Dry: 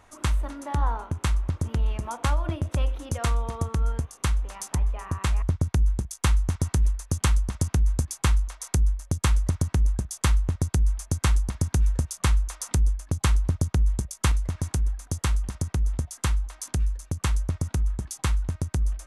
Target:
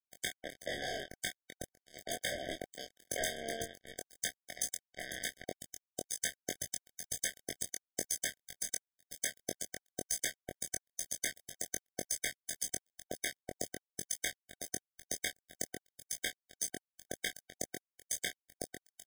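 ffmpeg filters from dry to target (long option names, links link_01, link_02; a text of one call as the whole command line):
ffmpeg -i in.wav -filter_complex "[0:a]highpass=690,alimiter=limit=-20dB:level=0:latency=1:release=261,tremolo=f=68:d=0.974,asoftclip=type=hard:threshold=-32.5dB,acrusher=bits=5:mix=0:aa=0.5,asplit=2[link_01][link_02];[link_02]adelay=22,volume=-4dB[link_03];[link_01][link_03]amix=inputs=2:normalize=0,afftfilt=real='re*eq(mod(floor(b*sr/1024/760),2),0)':imag='im*eq(mod(floor(b*sr/1024/760),2),0)':win_size=1024:overlap=0.75,volume=7dB" out.wav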